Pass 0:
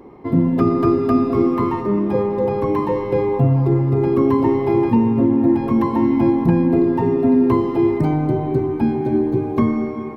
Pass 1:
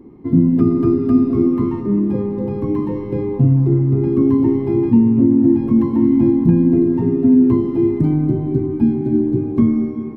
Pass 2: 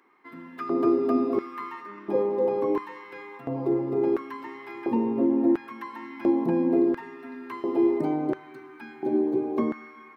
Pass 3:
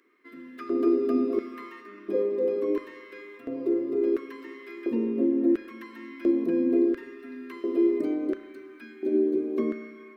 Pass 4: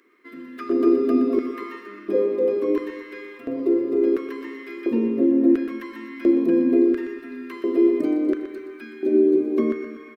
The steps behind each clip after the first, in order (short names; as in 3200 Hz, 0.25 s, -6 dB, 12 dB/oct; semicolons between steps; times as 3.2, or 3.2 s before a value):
resonant low shelf 410 Hz +11 dB, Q 1.5; gain -9.5 dB
LFO high-pass square 0.72 Hz 570–1500 Hz
fixed phaser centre 350 Hz, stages 4; spring tank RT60 1.6 s, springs 31 ms, chirp 75 ms, DRR 12.5 dB
feedback echo 0.122 s, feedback 49%, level -11 dB; gain +5.5 dB